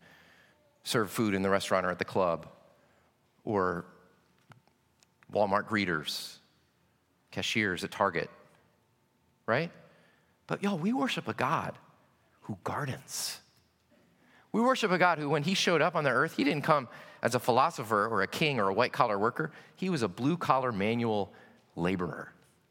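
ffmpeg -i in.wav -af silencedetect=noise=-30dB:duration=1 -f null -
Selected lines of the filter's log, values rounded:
silence_start: 2.36
silence_end: 3.47 | silence_duration: 1.11
silence_start: 3.80
silence_end: 5.36 | silence_duration: 1.55
silence_start: 6.20
silence_end: 7.37 | silence_duration: 1.18
silence_start: 8.23
silence_end: 9.48 | silence_duration: 1.25
silence_start: 13.33
silence_end: 14.54 | silence_duration: 1.21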